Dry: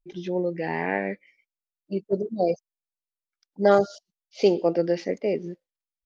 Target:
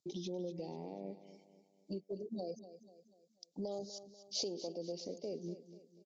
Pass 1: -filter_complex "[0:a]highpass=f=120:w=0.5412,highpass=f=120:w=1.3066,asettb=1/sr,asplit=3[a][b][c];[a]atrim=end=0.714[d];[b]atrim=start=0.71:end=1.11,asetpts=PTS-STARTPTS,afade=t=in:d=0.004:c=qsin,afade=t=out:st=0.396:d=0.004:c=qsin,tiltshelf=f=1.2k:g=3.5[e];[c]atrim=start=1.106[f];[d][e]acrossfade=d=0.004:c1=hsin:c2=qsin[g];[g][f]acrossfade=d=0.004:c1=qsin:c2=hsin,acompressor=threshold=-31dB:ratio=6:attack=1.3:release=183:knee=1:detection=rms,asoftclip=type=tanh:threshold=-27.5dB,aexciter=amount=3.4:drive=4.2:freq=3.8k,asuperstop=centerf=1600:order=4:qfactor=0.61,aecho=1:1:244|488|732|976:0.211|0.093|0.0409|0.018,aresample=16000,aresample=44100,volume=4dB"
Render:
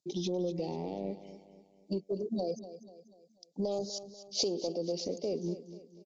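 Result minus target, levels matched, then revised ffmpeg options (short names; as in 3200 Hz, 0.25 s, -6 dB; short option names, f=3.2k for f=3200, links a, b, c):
compressor: peak gain reduction -9 dB
-filter_complex "[0:a]highpass=f=120:w=0.5412,highpass=f=120:w=1.3066,asettb=1/sr,asplit=3[a][b][c];[a]atrim=end=0.714[d];[b]atrim=start=0.71:end=1.11,asetpts=PTS-STARTPTS,afade=t=in:d=0.004:c=qsin,afade=t=out:st=0.396:d=0.004:c=qsin,tiltshelf=f=1.2k:g=3.5[e];[c]atrim=start=1.106[f];[d][e]acrossfade=d=0.004:c1=hsin:c2=qsin[g];[g][f]acrossfade=d=0.004:c1=qsin:c2=hsin,acompressor=threshold=-42dB:ratio=6:attack=1.3:release=183:knee=1:detection=rms,asoftclip=type=tanh:threshold=-27.5dB,aexciter=amount=3.4:drive=4.2:freq=3.8k,asuperstop=centerf=1600:order=4:qfactor=0.61,aecho=1:1:244|488|732|976:0.211|0.093|0.0409|0.018,aresample=16000,aresample=44100,volume=4dB"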